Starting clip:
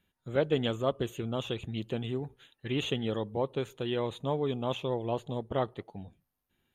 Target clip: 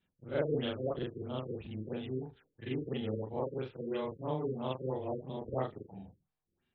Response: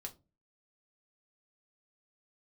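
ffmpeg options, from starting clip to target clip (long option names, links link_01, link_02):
-af "afftfilt=real='re':imag='-im':win_size=4096:overlap=0.75,afftfilt=real='re*lt(b*sr/1024,520*pow(5800/520,0.5+0.5*sin(2*PI*3*pts/sr)))':imag='im*lt(b*sr/1024,520*pow(5800/520,0.5+0.5*sin(2*PI*3*pts/sr)))':win_size=1024:overlap=0.75"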